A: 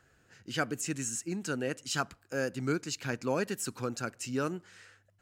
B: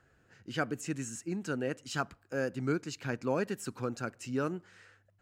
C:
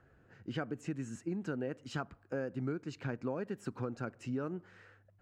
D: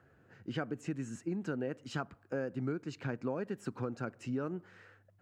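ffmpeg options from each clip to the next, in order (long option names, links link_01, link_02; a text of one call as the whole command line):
ffmpeg -i in.wav -af "highshelf=frequency=3000:gain=-9" out.wav
ffmpeg -i in.wav -af "lowpass=frequency=1200:poles=1,acompressor=threshold=-37dB:ratio=6,volume=3.5dB" out.wav
ffmpeg -i in.wav -af "highpass=83,volume=1dB" out.wav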